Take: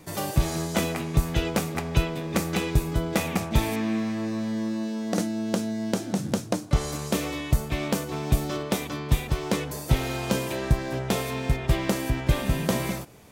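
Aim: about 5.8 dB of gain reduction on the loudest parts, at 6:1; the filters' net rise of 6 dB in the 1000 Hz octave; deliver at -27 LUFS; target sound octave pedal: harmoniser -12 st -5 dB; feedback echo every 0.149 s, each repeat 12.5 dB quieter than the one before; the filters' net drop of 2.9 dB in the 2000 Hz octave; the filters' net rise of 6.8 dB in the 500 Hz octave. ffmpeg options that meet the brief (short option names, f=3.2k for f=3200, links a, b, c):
-filter_complex "[0:a]equalizer=f=500:t=o:g=7,equalizer=f=1k:t=o:g=6.5,equalizer=f=2k:t=o:g=-6,acompressor=threshold=-21dB:ratio=6,aecho=1:1:149|298|447:0.237|0.0569|0.0137,asplit=2[a][b];[b]asetrate=22050,aresample=44100,atempo=2,volume=-5dB[c];[a][c]amix=inputs=2:normalize=0,volume=-0.5dB"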